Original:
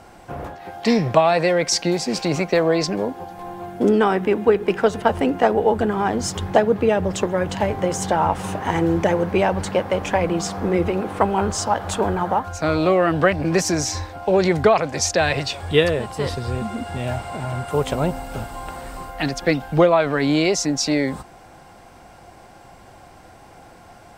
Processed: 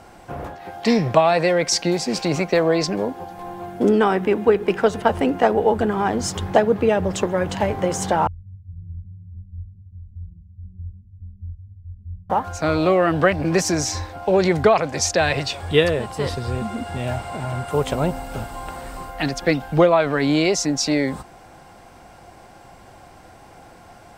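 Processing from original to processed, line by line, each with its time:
0:08.27–0:12.30: inverse Chebyshev low-pass filter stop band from 530 Hz, stop band 80 dB

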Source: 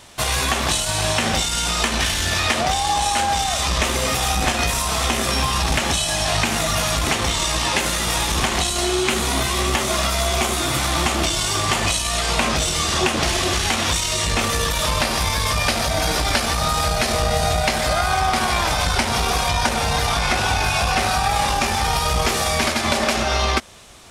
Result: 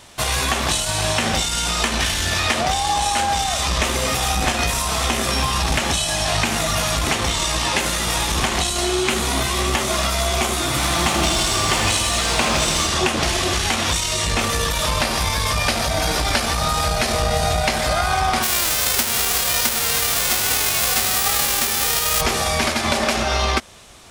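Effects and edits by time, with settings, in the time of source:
0:10.69–0:12.87: feedback echo at a low word length 81 ms, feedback 80%, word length 7 bits, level −6.5 dB
0:18.42–0:22.20: spectral envelope flattened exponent 0.1

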